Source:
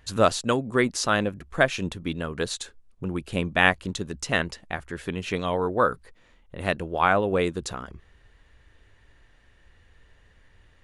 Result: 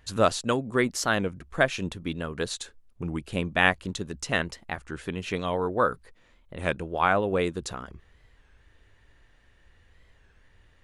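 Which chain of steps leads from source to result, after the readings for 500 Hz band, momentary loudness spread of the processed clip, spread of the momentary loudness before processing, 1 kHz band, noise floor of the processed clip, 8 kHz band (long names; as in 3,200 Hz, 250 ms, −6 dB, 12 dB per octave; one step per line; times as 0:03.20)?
−2.0 dB, 14 LU, 13 LU, −2.0 dB, −61 dBFS, −2.0 dB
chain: wow of a warped record 33 1/3 rpm, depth 160 cents
level −2 dB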